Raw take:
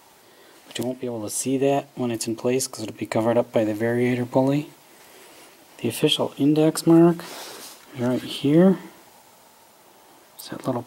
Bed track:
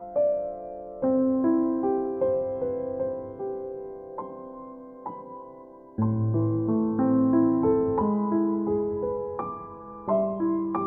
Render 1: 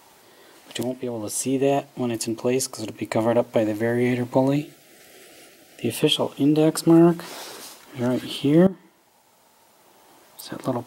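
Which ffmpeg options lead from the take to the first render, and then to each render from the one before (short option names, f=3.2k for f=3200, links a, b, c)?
-filter_complex "[0:a]asettb=1/sr,asplit=3[a][b][c];[a]atrim=end=4.564[d];[b]atrim=start=4.56:end=5.92,asetpts=PTS-STARTPTS,afade=t=in:d=0.004:c=qsin,afade=t=out:st=1.356:d=0.004:c=qsin,asuperstop=centerf=1000:order=8:qfactor=2[e];[c]atrim=start=5.916[f];[d][e]acrossfade=d=0.004:c1=hsin:c2=qsin[g];[g][f]acrossfade=d=0.004:c1=qsin:c2=hsin,asplit=2[h][i];[h]atrim=end=8.67,asetpts=PTS-STARTPTS,afade=t=out:st=8.666:d=0.004:c=hsin:silence=0.149624[j];[i]atrim=start=8.67,asetpts=PTS-STARTPTS,afade=t=in:d=1.78:silence=0.149624[k];[j][k]concat=n=2:v=0:a=1"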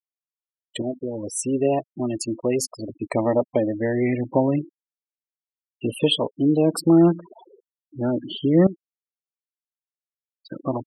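-af "afftfilt=real='re*gte(hypot(re,im),0.0562)':imag='im*gte(hypot(re,im),0.0562)':win_size=1024:overlap=0.75,adynamicequalizer=threshold=0.0126:dfrequency=1200:dqfactor=1.2:tfrequency=1200:tqfactor=1.2:attack=5:release=100:ratio=0.375:range=2:mode=cutabove:tftype=bell"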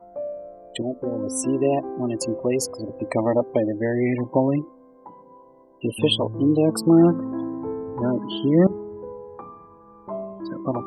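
-filter_complex "[1:a]volume=-7.5dB[a];[0:a][a]amix=inputs=2:normalize=0"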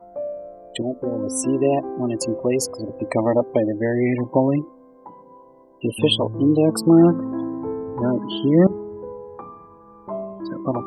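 -af "volume=2dB"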